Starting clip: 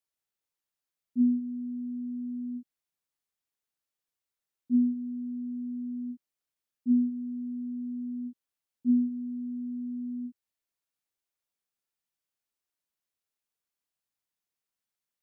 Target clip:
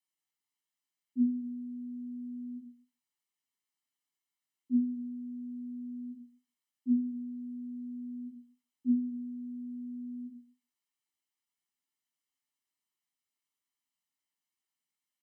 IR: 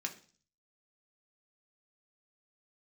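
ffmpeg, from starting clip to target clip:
-filter_complex "[0:a]aecho=1:1:1:0.65[link_01];[1:a]atrim=start_sample=2205,asetrate=57330,aresample=44100[link_02];[link_01][link_02]afir=irnorm=-1:irlink=0"

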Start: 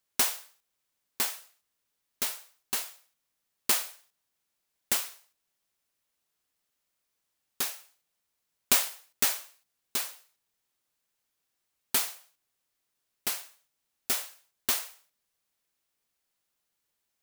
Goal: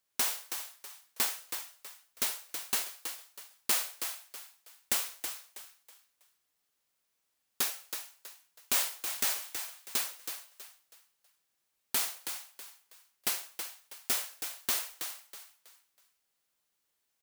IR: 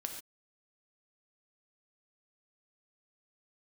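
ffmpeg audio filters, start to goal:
-filter_complex "[0:a]alimiter=limit=-15.5dB:level=0:latency=1:release=89,asplit=5[link_01][link_02][link_03][link_04][link_05];[link_02]adelay=323,afreqshift=85,volume=-8dB[link_06];[link_03]adelay=646,afreqshift=170,volume=-17.9dB[link_07];[link_04]adelay=969,afreqshift=255,volume=-27.8dB[link_08];[link_05]adelay=1292,afreqshift=340,volume=-37.7dB[link_09];[link_01][link_06][link_07][link_08][link_09]amix=inputs=5:normalize=0,asplit=2[link_10][link_11];[1:a]atrim=start_sample=2205,atrim=end_sample=3528,lowshelf=frequency=170:gain=-11.5[link_12];[link_11][link_12]afir=irnorm=-1:irlink=0,volume=-1dB[link_13];[link_10][link_13]amix=inputs=2:normalize=0,volume=-4.5dB"

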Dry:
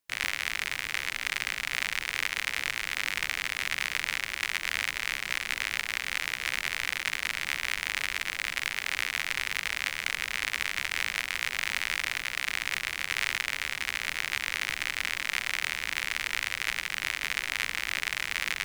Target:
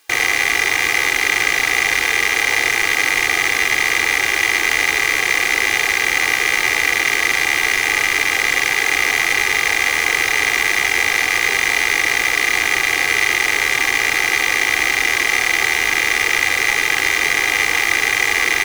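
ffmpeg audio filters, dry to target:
ffmpeg -i in.wav -filter_complex "[0:a]asplit=2[link_01][link_02];[link_02]highpass=frequency=720:poles=1,volume=31dB,asoftclip=type=tanh:threshold=-8.5dB[link_03];[link_01][link_03]amix=inputs=2:normalize=0,lowpass=frequency=5000:poles=1,volume=-6dB,aecho=1:1:2.5:0.71,volume=5dB" out.wav

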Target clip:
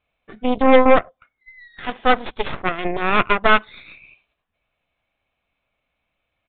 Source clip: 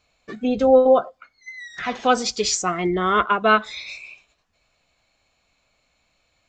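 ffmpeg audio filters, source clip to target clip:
ffmpeg -i in.wav -af "aeval=exprs='0.668*(cos(1*acos(clip(val(0)/0.668,-1,1)))-cos(1*PI/2))+0.0473*(cos(3*acos(clip(val(0)/0.668,-1,1)))-cos(3*PI/2))+0.133*(cos(6*acos(clip(val(0)/0.668,-1,1)))-cos(6*PI/2))+0.0422*(cos(7*acos(clip(val(0)/0.668,-1,1)))-cos(7*PI/2))':channel_layout=same,aresample=8000,aresample=44100,volume=2dB" out.wav

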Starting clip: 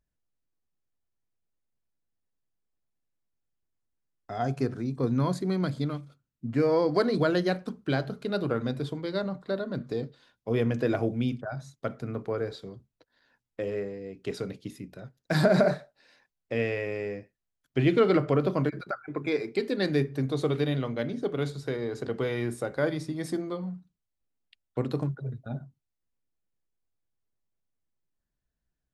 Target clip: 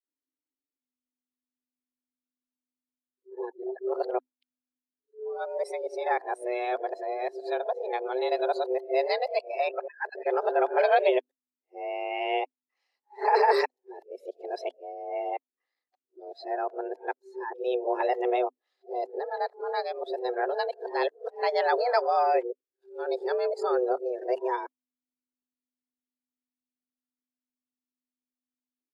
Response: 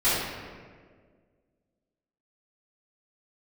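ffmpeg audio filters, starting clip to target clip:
-af "areverse,afreqshift=250,afftdn=noise_reduction=18:noise_floor=-42"

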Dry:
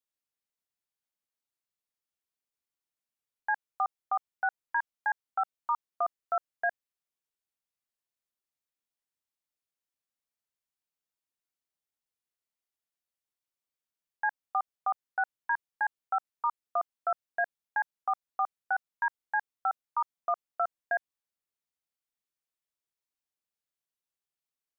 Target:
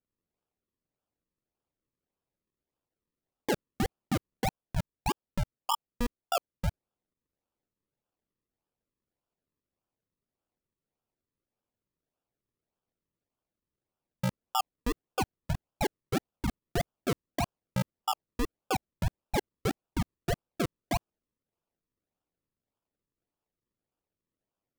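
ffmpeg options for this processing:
ffmpeg -i in.wav -filter_complex "[0:a]asettb=1/sr,asplit=3[link_01][link_02][link_03];[link_01]atrim=end=4.444[link_04];[link_02]atrim=start=4.44:end=6.66,asetpts=PTS-STARTPTS,afade=type=in:duration=0.004:curve=qsin,afade=type=out:start_time=2.216:duration=0.004:curve=qsin,bass=frequency=250:gain=-12,treble=frequency=4000:gain=-8[link_05];[link_03]atrim=start=6.656[link_06];[link_04][link_05]acrossfade=duration=0.004:curve1=hsin:curve2=qsin[link_07];[link_07][link_06]acrossfade=duration=0.004:curve1=qsin:curve2=hsin,acrusher=samples=41:mix=1:aa=0.000001:lfo=1:lforange=41:lforate=1.7" out.wav

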